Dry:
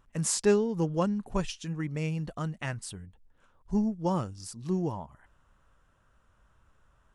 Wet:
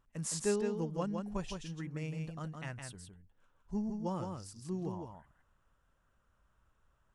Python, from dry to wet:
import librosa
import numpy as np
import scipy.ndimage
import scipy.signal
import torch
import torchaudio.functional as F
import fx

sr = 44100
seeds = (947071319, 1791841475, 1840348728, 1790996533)

y = x + 10.0 ** (-5.0 / 20.0) * np.pad(x, (int(162 * sr / 1000.0), 0))[:len(x)]
y = y * librosa.db_to_amplitude(-9.0)